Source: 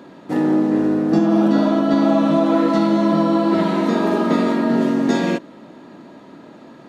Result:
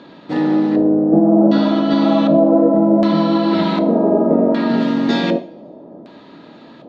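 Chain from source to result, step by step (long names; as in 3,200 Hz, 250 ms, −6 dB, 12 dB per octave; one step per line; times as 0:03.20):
auto-filter low-pass square 0.66 Hz 600–4,000 Hz
coupled-rooms reverb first 0.48 s, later 1.5 s, from −20 dB, DRR 9 dB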